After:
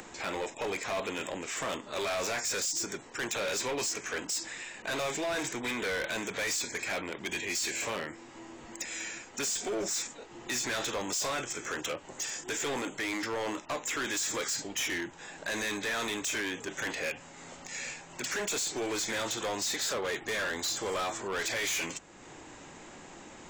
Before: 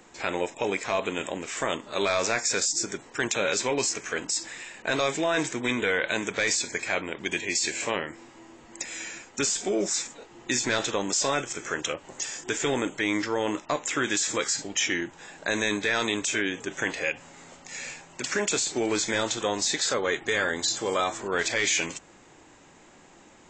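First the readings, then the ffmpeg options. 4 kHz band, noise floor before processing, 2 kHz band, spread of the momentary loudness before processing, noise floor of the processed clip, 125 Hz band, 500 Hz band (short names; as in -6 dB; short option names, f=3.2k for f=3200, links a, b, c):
-5.0 dB, -54 dBFS, -5.5 dB, 9 LU, -50 dBFS, -7.0 dB, -6.5 dB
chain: -filter_complex "[0:a]acrossover=split=430[a][b];[a]asoftclip=type=tanh:threshold=-36.5dB[c];[c][b]amix=inputs=2:normalize=0,acompressor=mode=upward:threshold=-39dB:ratio=2.5,asoftclip=type=hard:threshold=-28dB,volume=-1.5dB"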